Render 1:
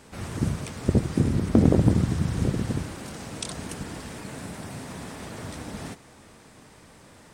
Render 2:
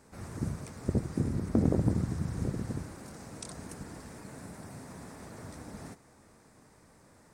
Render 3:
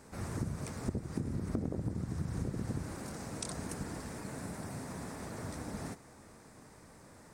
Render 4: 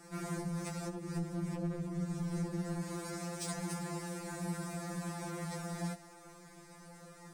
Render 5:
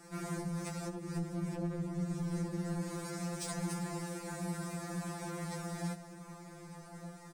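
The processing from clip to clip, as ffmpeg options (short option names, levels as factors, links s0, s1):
-af "equalizer=f=3100:t=o:w=0.74:g=-10.5,volume=0.398"
-af "acompressor=threshold=0.0178:ratio=16,volume=1.5"
-af "asoftclip=type=hard:threshold=0.0211,afftfilt=real='re*2.83*eq(mod(b,8),0)':imag='im*2.83*eq(mod(b,8),0)':win_size=2048:overlap=0.75,volume=1.68"
-filter_complex "[0:a]asplit=2[s0][s1];[s1]adelay=1224,volume=0.316,highshelf=f=4000:g=-27.6[s2];[s0][s2]amix=inputs=2:normalize=0"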